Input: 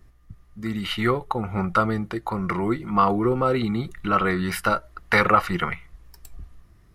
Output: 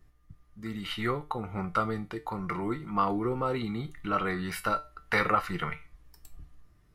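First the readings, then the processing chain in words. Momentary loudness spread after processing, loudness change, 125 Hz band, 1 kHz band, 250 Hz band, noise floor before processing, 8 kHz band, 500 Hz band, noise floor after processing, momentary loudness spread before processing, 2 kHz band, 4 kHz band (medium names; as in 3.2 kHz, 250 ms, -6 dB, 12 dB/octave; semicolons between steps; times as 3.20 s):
9 LU, -8.0 dB, -8.0 dB, -7.5 dB, -8.5 dB, -55 dBFS, -7.0 dB, -8.5 dB, -62 dBFS, 9 LU, -7.5 dB, -7.0 dB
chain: feedback comb 150 Hz, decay 0.28 s, harmonics all, mix 70%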